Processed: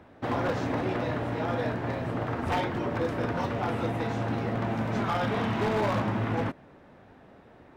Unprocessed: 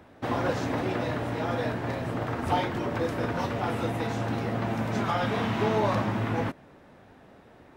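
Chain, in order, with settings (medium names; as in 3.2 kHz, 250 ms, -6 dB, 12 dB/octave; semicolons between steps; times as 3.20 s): treble shelf 5.4 kHz -10 dB; wavefolder -20.5 dBFS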